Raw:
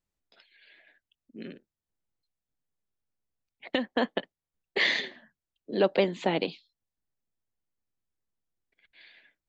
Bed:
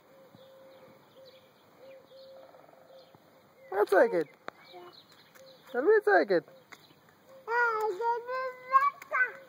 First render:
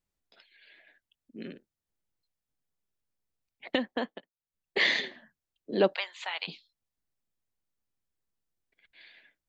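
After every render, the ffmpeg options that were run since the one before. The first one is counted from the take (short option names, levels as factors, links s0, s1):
-filter_complex "[0:a]asplit=3[s0][s1][s2];[s0]afade=t=out:st=5.93:d=0.02[s3];[s1]highpass=f=1000:w=0.5412,highpass=f=1000:w=1.3066,afade=t=in:st=5.93:d=0.02,afade=t=out:st=6.47:d=0.02[s4];[s2]afade=t=in:st=6.47:d=0.02[s5];[s3][s4][s5]amix=inputs=3:normalize=0,asplit=3[s6][s7][s8];[s6]atrim=end=4.22,asetpts=PTS-STARTPTS,afade=t=out:st=3.77:d=0.45:silence=0.1[s9];[s7]atrim=start=4.22:end=4.35,asetpts=PTS-STARTPTS,volume=0.1[s10];[s8]atrim=start=4.35,asetpts=PTS-STARTPTS,afade=t=in:d=0.45:silence=0.1[s11];[s9][s10][s11]concat=n=3:v=0:a=1"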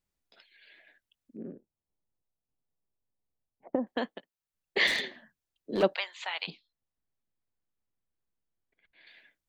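-filter_complex "[0:a]asettb=1/sr,asplit=3[s0][s1][s2];[s0]atrim=end=1.374[s3];[s1]atrim=start=1.37:end=3.87,asetpts=PTS-STARTPTS,afade=t=in:d=0.004:c=qsin,afade=t=out:st=2.496:d=0.004:c=qsin,lowpass=f=1000:w=0.5412,lowpass=f=1000:w=1.3066[s4];[s2]atrim=start=3.866[s5];[s3][s4]acrossfade=d=0.004:c1=hsin:c2=qsin[s6];[s6][s5]acrossfade=d=0.004:c1=qsin:c2=hsin,asettb=1/sr,asplit=3[s7][s8][s9];[s7]atrim=end=4.874[s10];[s8]atrim=start=4.87:end=5.83,asetpts=PTS-STARTPTS,afade=t=in:d=0.004:c=qsin,afade=t=out:st=0.956:d=0.004:c=qsin,asoftclip=type=hard:threshold=0.0596[s11];[s9]atrim=start=5.826[s12];[s10][s11]acrossfade=d=0.004:c1=hsin:c2=qsin[s13];[s13][s12]acrossfade=d=0.004:c1=qsin:c2=hsin,asettb=1/sr,asplit=3[s14][s15][s16];[s14]atrim=end=6.504[s17];[s15]atrim=start=6.5:end=9.07,asetpts=PTS-STARTPTS,afade=t=in:d=0.004:c=qsin,afade=t=out:st=2.566:d=0.004:c=qsin,lowpass=f=1500:p=1[s18];[s16]atrim=start=9.066[s19];[s17][s18]acrossfade=d=0.004:c1=hsin:c2=qsin[s20];[s20][s19]acrossfade=d=0.004:c1=qsin:c2=hsin"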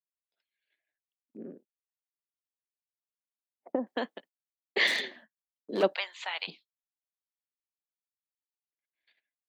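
-af "agate=range=0.0398:threshold=0.00224:ratio=16:detection=peak,highpass=220"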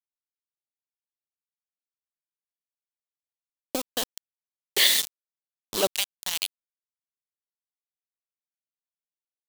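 -af "aeval=exprs='val(0)*gte(abs(val(0)),0.0335)':c=same,aexciter=amount=2.8:drive=8.2:freq=2900"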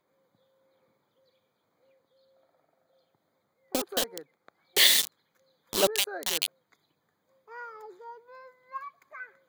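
-filter_complex "[1:a]volume=0.178[s0];[0:a][s0]amix=inputs=2:normalize=0"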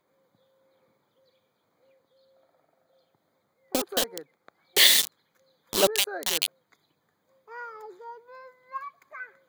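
-af "volume=1.33"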